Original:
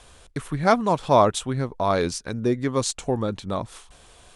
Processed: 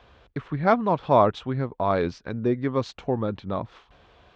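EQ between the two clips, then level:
Gaussian smoothing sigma 2.4 samples
high-pass filter 51 Hz
−1.0 dB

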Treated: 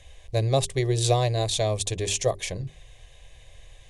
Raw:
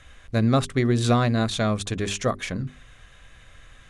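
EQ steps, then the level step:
dynamic equaliser 8,600 Hz, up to +5 dB, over −45 dBFS, Q 0.74
phaser with its sweep stopped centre 570 Hz, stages 4
+2.0 dB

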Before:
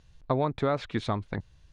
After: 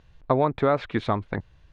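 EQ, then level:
bass and treble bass −4 dB, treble −14 dB
+6.0 dB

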